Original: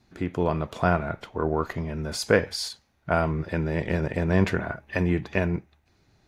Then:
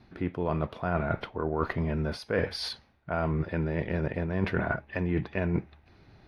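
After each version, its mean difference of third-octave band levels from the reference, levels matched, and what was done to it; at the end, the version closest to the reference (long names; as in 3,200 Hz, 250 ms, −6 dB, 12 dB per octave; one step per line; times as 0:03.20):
4.0 dB: reversed playback
downward compressor 10 to 1, threshold −32 dBFS, peak gain reduction 18.5 dB
reversed playback
moving average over 6 samples
level +7.5 dB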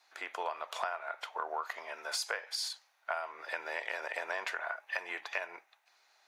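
14.0 dB: high-pass filter 720 Hz 24 dB per octave
downward compressor 12 to 1, threshold −34 dBFS, peak gain reduction 15.5 dB
level +2 dB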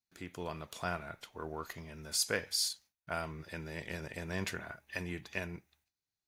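6.5 dB: noise gate with hold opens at −50 dBFS
first-order pre-emphasis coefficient 0.9
level +2 dB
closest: first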